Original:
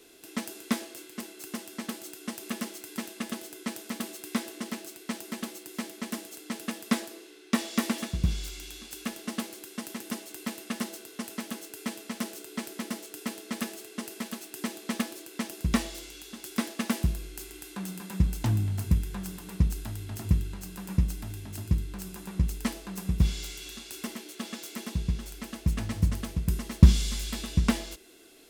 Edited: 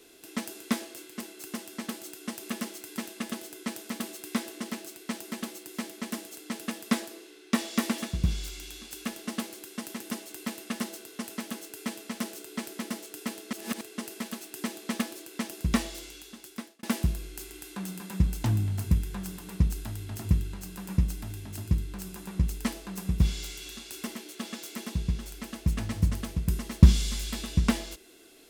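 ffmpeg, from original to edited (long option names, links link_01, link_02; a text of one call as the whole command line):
ffmpeg -i in.wav -filter_complex "[0:a]asplit=4[link_01][link_02][link_03][link_04];[link_01]atrim=end=13.532[link_05];[link_02]atrim=start=13.528:end=13.812,asetpts=PTS-STARTPTS,areverse[link_06];[link_03]atrim=start=13.808:end=16.83,asetpts=PTS-STARTPTS,afade=type=out:start_time=2.282:duration=0.74[link_07];[link_04]atrim=start=16.83,asetpts=PTS-STARTPTS,afade=type=in:duration=0.004:curve=hsin[link_08];[link_05][link_06]acrossfade=duration=0.004:curve1=hsin:curve2=hsin[link_09];[link_07][link_08]concat=n=2:v=0:a=1[link_10];[link_09][link_10]acrossfade=duration=0.004:curve1=hsin:curve2=hsin" out.wav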